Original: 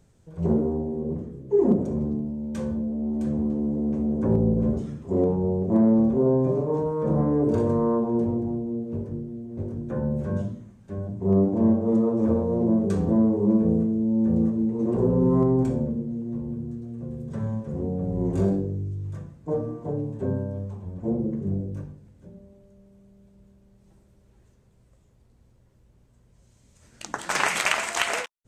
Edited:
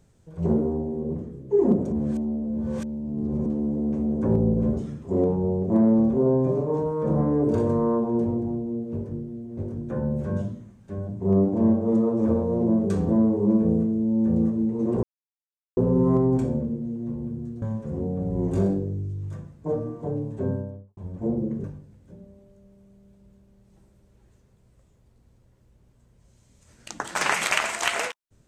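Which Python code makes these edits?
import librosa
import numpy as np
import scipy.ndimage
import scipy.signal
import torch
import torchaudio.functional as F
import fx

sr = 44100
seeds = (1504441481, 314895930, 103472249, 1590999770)

y = fx.studio_fade_out(x, sr, start_s=20.3, length_s=0.49)
y = fx.edit(y, sr, fx.reverse_span(start_s=1.92, length_s=1.54),
    fx.insert_silence(at_s=15.03, length_s=0.74),
    fx.cut(start_s=16.88, length_s=0.56),
    fx.cut(start_s=21.46, length_s=0.32), tone=tone)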